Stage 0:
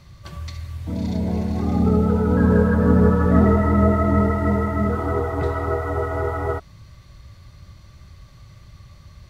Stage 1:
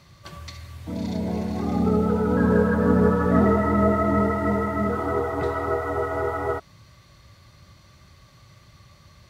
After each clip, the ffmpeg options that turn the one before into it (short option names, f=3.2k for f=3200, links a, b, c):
-af "highpass=f=210:p=1"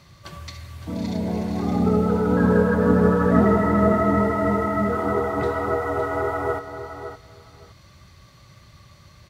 -af "aecho=1:1:563|1126:0.316|0.0506,volume=1.5dB"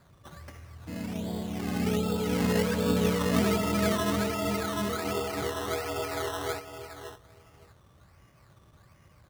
-af "acrusher=samples=15:mix=1:aa=0.000001:lfo=1:lforange=9:lforate=1.3,volume=-8.5dB"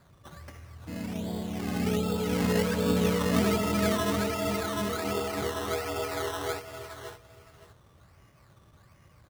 -af "aecho=1:1:572:0.188"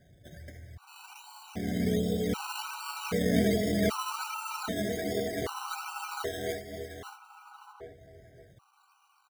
-filter_complex "[0:a]asplit=2[a][b];[b]adelay=1341,volume=-11dB,highshelf=f=4k:g=-30.2[c];[a][c]amix=inputs=2:normalize=0,afftfilt=real='re*gt(sin(2*PI*0.64*pts/sr)*(1-2*mod(floor(b*sr/1024/770),2)),0)':imag='im*gt(sin(2*PI*0.64*pts/sr)*(1-2*mod(floor(b*sr/1024/770),2)),0)':win_size=1024:overlap=0.75"